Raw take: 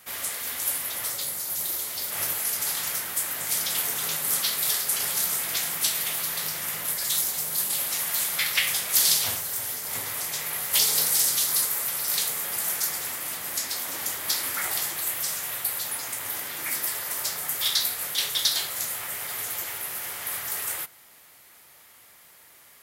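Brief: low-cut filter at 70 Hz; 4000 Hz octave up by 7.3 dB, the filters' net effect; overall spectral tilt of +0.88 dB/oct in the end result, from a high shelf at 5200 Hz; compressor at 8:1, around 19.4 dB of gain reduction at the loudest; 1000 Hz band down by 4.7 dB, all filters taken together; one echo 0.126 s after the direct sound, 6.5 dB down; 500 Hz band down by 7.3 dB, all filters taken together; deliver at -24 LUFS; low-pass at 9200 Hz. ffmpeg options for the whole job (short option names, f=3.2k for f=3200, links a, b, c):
-af "highpass=70,lowpass=9.2k,equalizer=f=500:t=o:g=-8,equalizer=f=1k:t=o:g=-5,equalizer=f=4k:t=o:g=7.5,highshelf=f=5.2k:g=4,acompressor=threshold=-34dB:ratio=8,aecho=1:1:126:0.473,volume=9.5dB"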